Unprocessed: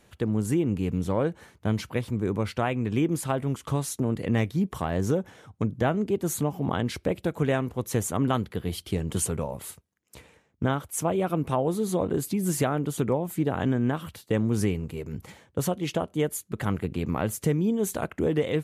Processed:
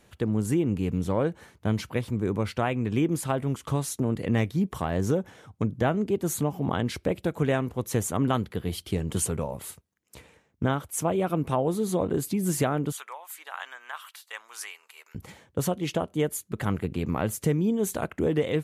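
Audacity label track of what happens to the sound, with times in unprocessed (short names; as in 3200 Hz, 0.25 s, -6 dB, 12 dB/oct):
12.920000	15.150000	HPF 990 Hz 24 dB/oct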